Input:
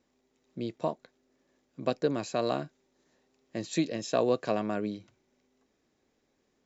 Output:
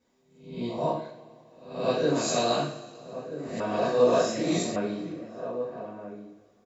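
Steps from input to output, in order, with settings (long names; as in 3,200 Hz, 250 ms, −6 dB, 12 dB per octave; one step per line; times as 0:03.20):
peak hold with a rise ahead of every peak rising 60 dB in 0.56 s
0:02.15–0:02.60: high-shelf EQ 3,400 Hz +11.5 dB
slap from a distant wall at 220 metres, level −11 dB
coupled-rooms reverb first 0.54 s, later 2.6 s, from −20 dB, DRR −9.5 dB
0:03.60–0:04.76: reverse
level −8 dB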